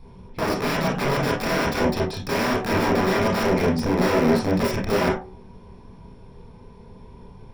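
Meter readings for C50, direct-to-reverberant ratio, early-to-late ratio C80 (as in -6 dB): 5.0 dB, -6.0 dB, 11.5 dB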